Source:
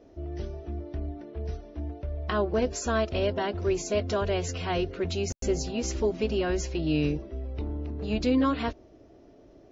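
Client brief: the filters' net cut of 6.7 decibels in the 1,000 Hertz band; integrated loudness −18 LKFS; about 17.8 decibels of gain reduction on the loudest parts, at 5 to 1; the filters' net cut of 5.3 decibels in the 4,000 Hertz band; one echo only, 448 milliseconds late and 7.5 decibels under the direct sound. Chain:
parametric band 1,000 Hz −9 dB
parametric band 4,000 Hz −7 dB
downward compressor 5 to 1, threshold −42 dBFS
single-tap delay 448 ms −7.5 dB
level +26 dB

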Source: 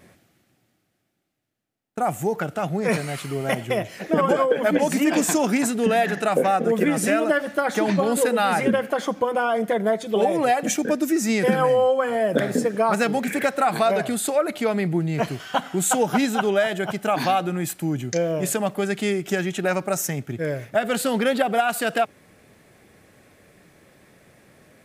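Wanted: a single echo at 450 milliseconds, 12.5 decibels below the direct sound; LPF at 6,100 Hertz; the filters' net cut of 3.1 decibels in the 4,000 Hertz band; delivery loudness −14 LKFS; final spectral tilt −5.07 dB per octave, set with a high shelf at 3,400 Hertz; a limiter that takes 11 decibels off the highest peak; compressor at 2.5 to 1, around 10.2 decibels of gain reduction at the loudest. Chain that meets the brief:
low-pass filter 6,100 Hz
high-shelf EQ 3,400 Hz +4 dB
parametric band 4,000 Hz −6.5 dB
downward compressor 2.5 to 1, threshold −31 dBFS
brickwall limiter −26.5 dBFS
single-tap delay 450 ms −12.5 dB
level +21 dB

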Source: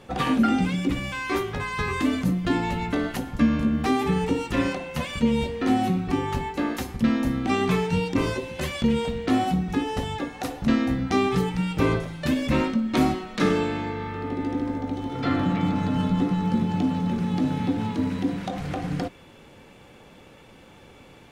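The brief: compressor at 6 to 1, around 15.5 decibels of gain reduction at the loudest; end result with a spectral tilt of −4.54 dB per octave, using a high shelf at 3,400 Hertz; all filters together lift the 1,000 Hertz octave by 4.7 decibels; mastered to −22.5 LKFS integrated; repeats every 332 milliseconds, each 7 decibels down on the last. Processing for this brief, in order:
parametric band 1,000 Hz +5.5 dB
high-shelf EQ 3,400 Hz +7 dB
downward compressor 6 to 1, threshold −33 dBFS
repeating echo 332 ms, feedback 45%, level −7 dB
level +12.5 dB

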